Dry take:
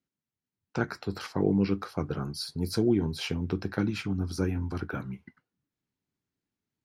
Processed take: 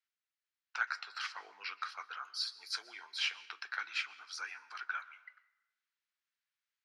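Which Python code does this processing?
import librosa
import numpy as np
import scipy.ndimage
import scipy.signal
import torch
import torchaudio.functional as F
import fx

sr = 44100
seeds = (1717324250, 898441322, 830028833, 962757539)

y = scipy.signal.sosfilt(scipy.signal.butter(4, 1300.0, 'highpass', fs=sr, output='sos'), x)
y = fx.air_absorb(y, sr, metres=110.0)
y = fx.rev_plate(y, sr, seeds[0], rt60_s=0.98, hf_ratio=0.65, predelay_ms=110, drr_db=18.0)
y = F.gain(torch.from_numpy(y), 4.0).numpy()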